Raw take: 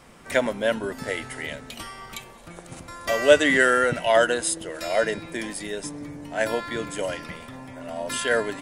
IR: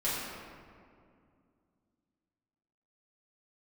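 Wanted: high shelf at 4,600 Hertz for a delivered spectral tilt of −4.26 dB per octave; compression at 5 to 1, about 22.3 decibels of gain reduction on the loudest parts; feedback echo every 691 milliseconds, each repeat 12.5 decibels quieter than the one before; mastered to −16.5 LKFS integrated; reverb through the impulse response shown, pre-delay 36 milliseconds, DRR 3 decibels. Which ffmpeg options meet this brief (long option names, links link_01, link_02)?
-filter_complex "[0:a]highshelf=frequency=4600:gain=-9,acompressor=threshold=-36dB:ratio=5,aecho=1:1:691|1382|2073:0.237|0.0569|0.0137,asplit=2[link_01][link_02];[1:a]atrim=start_sample=2205,adelay=36[link_03];[link_02][link_03]afir=irnorm=-1:irlink=0,volume=-11dB[link_04];[link_01][link_04]amix=inputs=2:normalize=0,volume=20.5dB"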